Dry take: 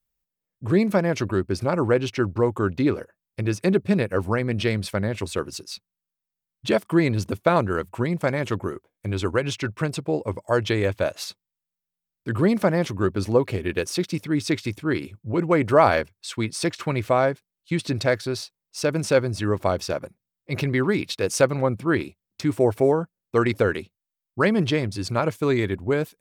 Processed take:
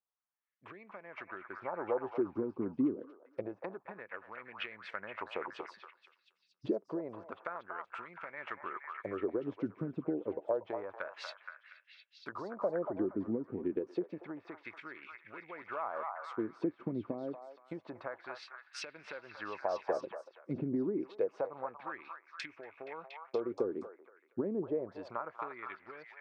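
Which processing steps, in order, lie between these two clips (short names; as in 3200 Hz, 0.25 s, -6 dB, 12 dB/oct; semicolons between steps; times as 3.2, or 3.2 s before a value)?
recorder AGC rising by 6.3 dB/s; treble ducked by the level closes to 1100 Hz, closed at -17.5 dBFS; HPF 170 Hz 6 dB/oct; compressor, threshold -25 dBFS, peak gain reduction 12.5 dB; LFO band-pass sine 0.28 Hz 250–2500 Hz; on a send: delay with a stepping band-pass 0.236 s, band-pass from 970 Hz, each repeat 0.7 oct, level -1 dB; on the sum: gain -1 dB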